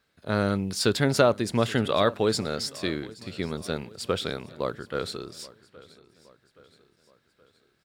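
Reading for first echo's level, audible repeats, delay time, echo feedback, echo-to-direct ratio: -21.0 dB, 3, 823 ms, 50%, -20.0 dB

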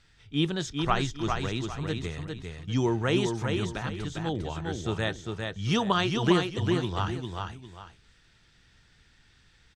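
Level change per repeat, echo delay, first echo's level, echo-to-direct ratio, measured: -10.5 dB, 402 ms, -4.5 dB, -4.0 dB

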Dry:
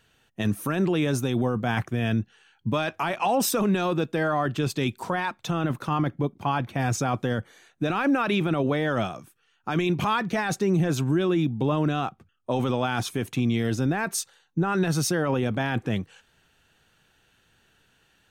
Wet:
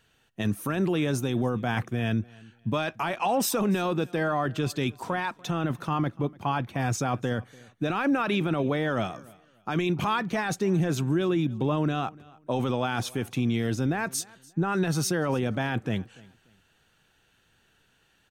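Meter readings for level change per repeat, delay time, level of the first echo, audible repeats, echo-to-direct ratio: -11.5 dB, 292 ms, -23.5 dB, 2, -23.0 dB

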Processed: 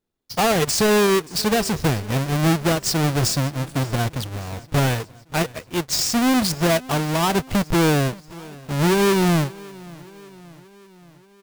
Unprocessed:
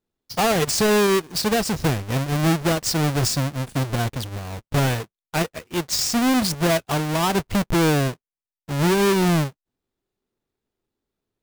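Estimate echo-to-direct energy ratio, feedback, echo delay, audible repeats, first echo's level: -20.0 dB, 58%, 578 ms, 3, -21.5 dB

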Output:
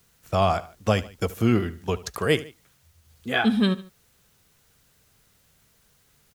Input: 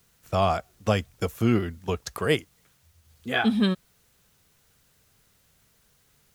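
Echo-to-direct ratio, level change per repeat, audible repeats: -17.0 dB, -6.0 dB, 2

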